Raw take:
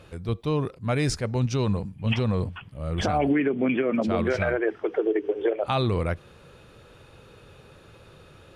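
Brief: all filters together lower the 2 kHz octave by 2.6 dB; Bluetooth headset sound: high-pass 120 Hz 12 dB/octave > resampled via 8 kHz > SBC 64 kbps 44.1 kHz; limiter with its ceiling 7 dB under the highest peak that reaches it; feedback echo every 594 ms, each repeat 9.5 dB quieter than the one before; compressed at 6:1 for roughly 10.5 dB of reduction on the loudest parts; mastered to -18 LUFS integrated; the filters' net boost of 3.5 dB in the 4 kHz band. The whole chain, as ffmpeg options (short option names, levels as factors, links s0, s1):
-af "equalizer=f=2000:t=o:g=-5,equalizer=f=4000:t=o:g=6,acompressor=threshold=0.0282:ratio=6,alimiter=level_in=1.58:limit=0.0631:level=0:latency=1,volume=0.631,highpass=120,aecho=1:1:594|1188|1782|2376:0.335|0.111|0.0365|0.012,aresample=8000,aresample=44100,volume=10.6" -ar 44100 -c:a sbc -b:a 64k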